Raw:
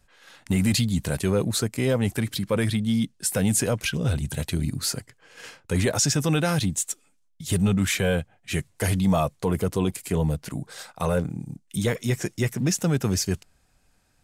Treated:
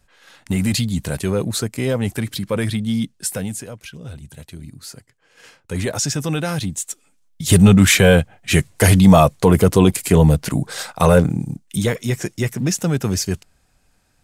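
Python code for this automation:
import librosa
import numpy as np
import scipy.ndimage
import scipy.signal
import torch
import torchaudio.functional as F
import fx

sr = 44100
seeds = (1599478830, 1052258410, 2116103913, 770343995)

y = fx.gain(x, sr, db=fx.line((3.25, 2.5), (3.66, -10.0), (4.8, -10.0), (5.89, 0.5), (6.87, 0.5), (7.47, 11.5), (11.32, 11.5), (11.99, 3.5)))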